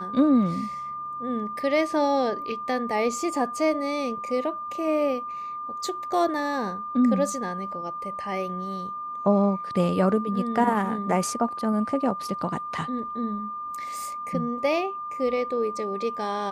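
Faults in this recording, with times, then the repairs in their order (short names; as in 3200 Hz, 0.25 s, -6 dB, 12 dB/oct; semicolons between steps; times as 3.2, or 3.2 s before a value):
tone 1200 Hz -31 dBFS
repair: notch 1200 Hz, Q 30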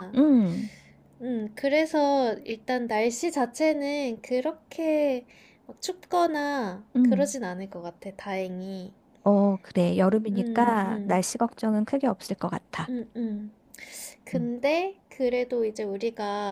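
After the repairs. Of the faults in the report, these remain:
none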